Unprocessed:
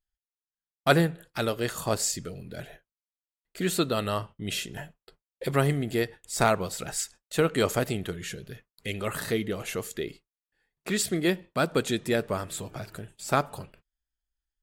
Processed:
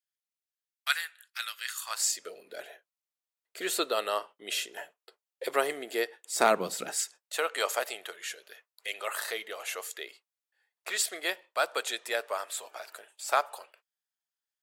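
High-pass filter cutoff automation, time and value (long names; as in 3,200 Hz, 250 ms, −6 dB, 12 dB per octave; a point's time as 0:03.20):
high-pass filter 24 dB per octave
0:01.80 1,500 Hz
0:02.29 420 Hz
0:06.19 420 Hz
0:06.71 180 Hz
0:07.36 590 Hz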